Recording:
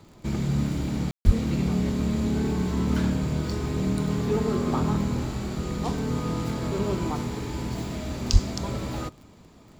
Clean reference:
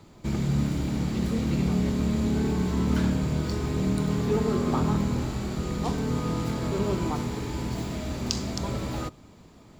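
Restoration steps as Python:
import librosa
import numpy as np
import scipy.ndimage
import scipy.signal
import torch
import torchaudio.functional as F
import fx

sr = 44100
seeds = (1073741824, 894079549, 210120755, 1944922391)

y = fx.fix_declick_ar(x, sr, threshold=6.5)
y = fx.highpass(y, sr, hz=140.0, slope=24, at=(1.25, 1.37), fade=0.02)
y = fx.highpass(y, sr, hz=140.0, slope=24, at=(8.32, 8.44), fade=0.02)
y = fx.fix_ambience(y, sr, seeds[0], print_start_s=9.26, print_end_s=9.76, start_s=1.11, end_s=1.25)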